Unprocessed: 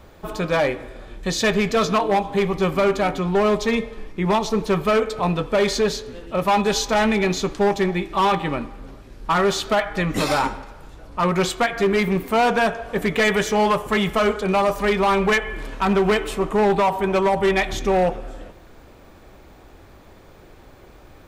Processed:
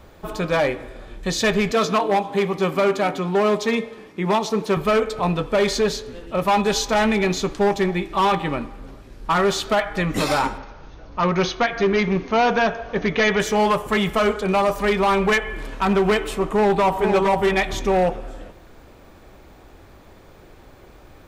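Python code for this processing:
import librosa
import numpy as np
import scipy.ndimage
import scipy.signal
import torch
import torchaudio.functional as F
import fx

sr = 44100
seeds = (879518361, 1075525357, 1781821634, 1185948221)

y = fx.highpass(x, sr, hz=160.0, slope=12, at=(1.72, 4.77))
y = fx.brickwall_lowpass(y, sr, high_hz=6700.0, at=(10.58, 13.4))
y = fx.echo_throw(y, sr, start_s=16.34, length_s=0.74, ms=460, feedback_pct=15, wet_db=-5.5)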